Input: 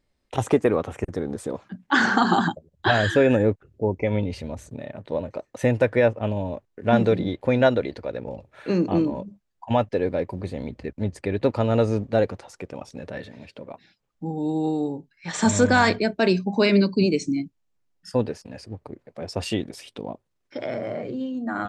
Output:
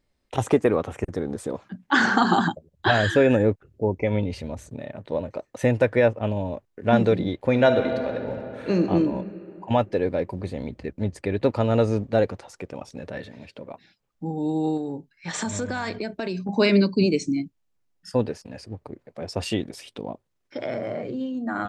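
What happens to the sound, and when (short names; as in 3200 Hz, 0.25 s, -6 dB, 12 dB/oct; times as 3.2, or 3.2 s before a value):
7.48–8.83 reverb throw, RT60 2.9 s, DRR 5.5 dB
14.77–16.49 compressor, threshold -25 dBFS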